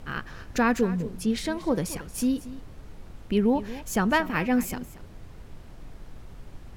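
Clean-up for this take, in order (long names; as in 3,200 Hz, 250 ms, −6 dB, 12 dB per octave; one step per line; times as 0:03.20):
noise reduction from a noise print 27 dB
echo removal 230 ms −16 dB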